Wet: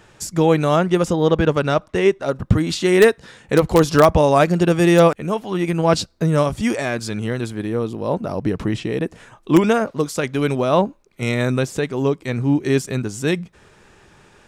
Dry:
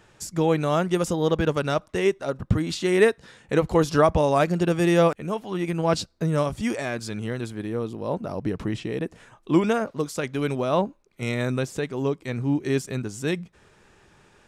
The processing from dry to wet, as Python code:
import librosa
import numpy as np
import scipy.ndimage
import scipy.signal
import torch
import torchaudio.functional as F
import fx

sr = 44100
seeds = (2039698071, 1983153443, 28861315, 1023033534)

p1 = fx.high_shelf(x, sr, hz=6100.0, db=-9.0, at=(0.76, 2.26))
p2 = (np.mod(10.0 ** (7.5 / 20.0) * p1 + 1.0, 2.0) - 1.0) / 10.0 ** (7.5 / 20.0)
p3 = p1 + (p2 * 10.0 ** (-9.0 / 20.0))
y = p3 * 10.0 ** (3.5 / 20.0)